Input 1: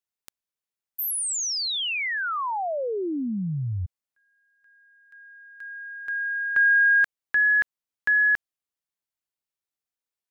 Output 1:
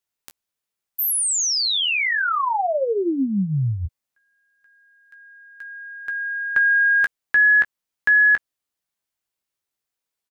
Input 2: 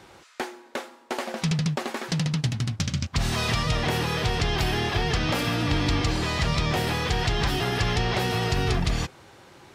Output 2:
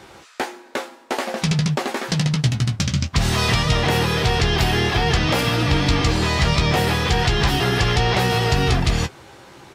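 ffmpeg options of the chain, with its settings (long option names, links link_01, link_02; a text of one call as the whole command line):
ffmpeg -i in.wav -af "aecho=1:1:15|26:0.398|0.15,volume=5.5dB" out.wav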